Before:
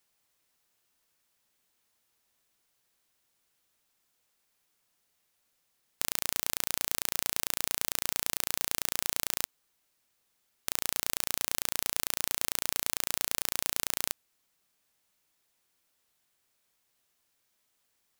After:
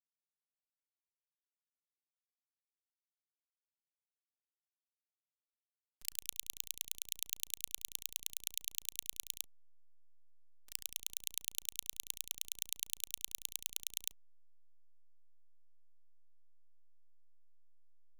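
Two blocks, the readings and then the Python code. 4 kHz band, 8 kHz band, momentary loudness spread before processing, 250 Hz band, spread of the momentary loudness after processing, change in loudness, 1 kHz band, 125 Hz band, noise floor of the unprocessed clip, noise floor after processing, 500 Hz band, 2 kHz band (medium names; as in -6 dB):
-8.5 dB, -8.0 dB, 3 LU, under -20 dB, 3 LU, -9.0 dB, under -35 dB, -16.5 dB, -76 dBFS, under -85 dBFS, under -25 dB, -15.5 dB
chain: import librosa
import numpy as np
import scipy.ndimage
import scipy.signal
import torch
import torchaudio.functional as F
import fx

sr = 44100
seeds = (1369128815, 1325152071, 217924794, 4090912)

y = scipy.signal.sosfilt(scipy.signal.cheby2(4, 80, [200.0, 640.0], 'bandstop', fs=sr, output='sos'), x)
y = fx.auto_swell(y, sr, attack_ms=278.0)
y = fx.level_steps(y, sr, step_db=12)
y = fx.backlash(y, sr, play_db=-56.0)
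y = fx.env_flanger(y, sr, rest_ms=8.1, full_db=-57.5)
y = y * librosa.db_to_amplitude(14.0)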